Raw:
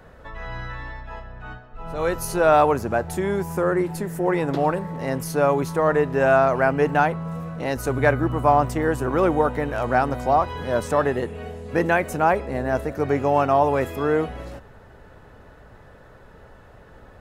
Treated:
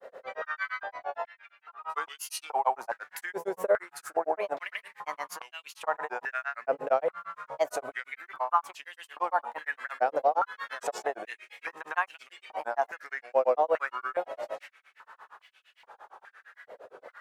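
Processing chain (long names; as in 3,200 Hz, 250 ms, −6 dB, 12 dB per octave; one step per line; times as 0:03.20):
granular cloud 111 ms, grains 8.7 per second, spray 106 ms, pitch spread up and down by 3 semitones
downward compressor 4 to 1, threshold −29 dBFS, peak gain reduction 13.5 dB
high-pass on a step sequencer 2.4 Hz 520–2,800 Hz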